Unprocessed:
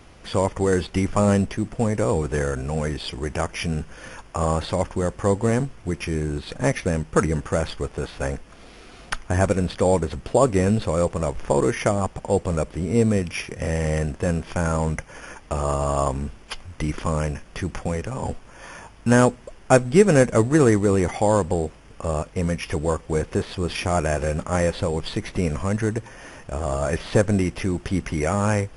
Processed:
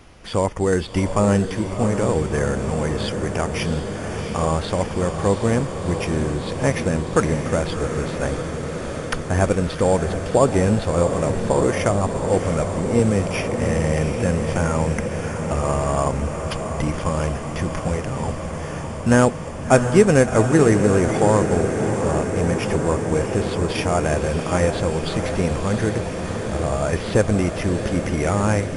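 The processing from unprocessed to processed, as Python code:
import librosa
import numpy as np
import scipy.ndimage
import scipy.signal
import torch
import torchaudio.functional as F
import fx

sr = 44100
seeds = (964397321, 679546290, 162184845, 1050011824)

y = fx.echo_diffused(x, sr, ms=697, feedback_pct=79, wet_db=-8.0)
y = fx.band_squash(y, sr, depth_pct=40, at=(12.99, 15.08))
y = y * librosa.db_to_amplitude(1.0)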